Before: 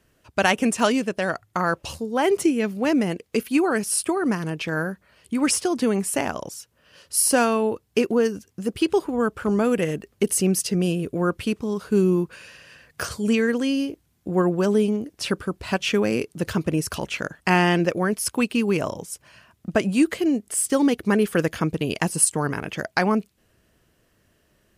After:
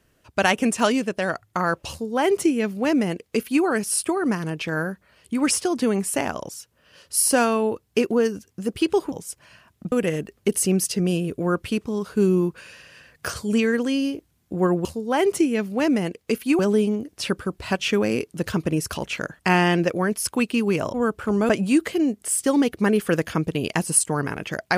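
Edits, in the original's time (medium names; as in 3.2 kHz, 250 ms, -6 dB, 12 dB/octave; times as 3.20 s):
1.90–3.64 s: copy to 14.60 s
9.12–9.67 s: swap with 18.95–19.75 s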